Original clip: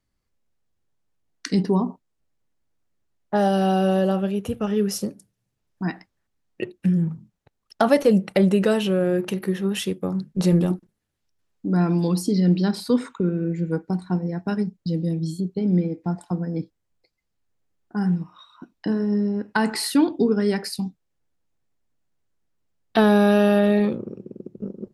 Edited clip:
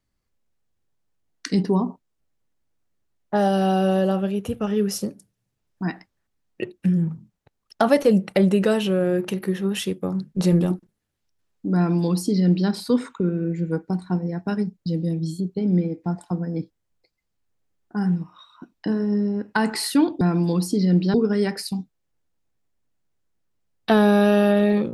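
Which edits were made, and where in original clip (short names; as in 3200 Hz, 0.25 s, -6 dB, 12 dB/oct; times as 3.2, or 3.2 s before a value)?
11.76–12.69 copy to 20.21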